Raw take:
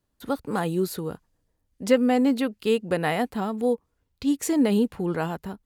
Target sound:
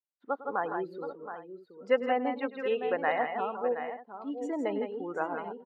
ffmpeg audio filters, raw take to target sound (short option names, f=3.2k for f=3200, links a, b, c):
-af "afftdn=nr=23:nf=-31,highpass=630,lowpass=2k,aecho=1:1:103|156|163|721|786:0.15|0.251|0.447|0.299|0.119"